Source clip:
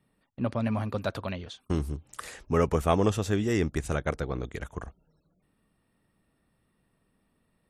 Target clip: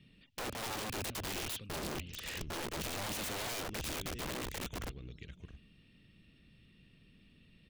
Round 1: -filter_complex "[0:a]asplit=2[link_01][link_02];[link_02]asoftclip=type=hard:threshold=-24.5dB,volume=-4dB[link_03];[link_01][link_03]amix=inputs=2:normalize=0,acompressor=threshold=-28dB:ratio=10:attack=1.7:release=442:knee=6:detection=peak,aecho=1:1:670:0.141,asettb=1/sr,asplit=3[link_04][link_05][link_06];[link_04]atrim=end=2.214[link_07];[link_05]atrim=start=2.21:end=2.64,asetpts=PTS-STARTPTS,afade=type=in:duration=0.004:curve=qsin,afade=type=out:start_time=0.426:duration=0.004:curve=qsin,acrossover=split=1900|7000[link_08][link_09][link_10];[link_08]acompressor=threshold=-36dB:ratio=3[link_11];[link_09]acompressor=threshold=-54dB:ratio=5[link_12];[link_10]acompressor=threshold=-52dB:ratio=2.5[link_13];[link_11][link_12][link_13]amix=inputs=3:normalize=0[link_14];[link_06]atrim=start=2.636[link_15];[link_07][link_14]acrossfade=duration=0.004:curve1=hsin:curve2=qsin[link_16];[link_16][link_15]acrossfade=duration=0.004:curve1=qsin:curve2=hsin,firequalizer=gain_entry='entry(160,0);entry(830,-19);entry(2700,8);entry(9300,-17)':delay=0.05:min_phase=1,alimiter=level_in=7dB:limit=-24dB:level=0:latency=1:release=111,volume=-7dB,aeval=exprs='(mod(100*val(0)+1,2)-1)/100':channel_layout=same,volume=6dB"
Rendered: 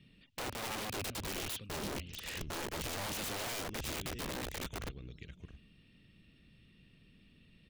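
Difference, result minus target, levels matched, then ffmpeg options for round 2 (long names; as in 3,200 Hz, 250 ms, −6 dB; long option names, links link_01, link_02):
hard clipping: distortion −5 dB
-filter_complex "[0:a]asplit=2[link_01][link_02];[link_02]asoftclip=type=hard:threshold=-32.5dB,volume=-4dB[link_03];[link_01][link_03]amix=inputs=2:normalize=0,acompressor=threshold=-28dB:ratio=10:attack=1.7:release=442:knee=6:detection=peak,aecho=1:1:670:0.141,asettb=1/sr,asplit=3[link_04][link_05][link_06];[link_04]atrim=end=2.214[link_07];[link_05]atrim=start=2.21:end=2.64,asetpts=PTS-STARTPTS,afade=type=in:duration=0.004:curve=qsin,afade=type=out:start_time=0.426:duration=0.004:curve=qsin,acrossover=split=1900|7000[link_08][link_09][link_10];[link_08]acompressor=threshold=-36dB:ratio=3[link_11];[link_09]acompressor=threshold=-54dB:ratio=5[link_12];[link_10]acompressor=threshold=-52dB:ratio=2.5[link_13];[link_11][link_12][link_13]amix=inputs=3:normalize=0[link_14];[link_06]atrim=start=2.636[link_15];[link_07][link_14]acrossfade=duration=0.004:curve1=hsin:curve2=qsin[link_16];[link_16][link_15]acrossfade=duration=0.004:curve1=qsin:curve2=hsin,firequalizer=gain_entry='entry(160,0);entry(830,-19);entry(2700,8);entry(9300,-17)':delay=0.05:min_phase=1,alimiter=level_in=7dB:limit=-24dB:level=0:latency=1:release=111,volume=-7dB,aeval=exprs='(mod(100*val(0)+1,2)-1)/100':channel_layout=same,volume=6dB"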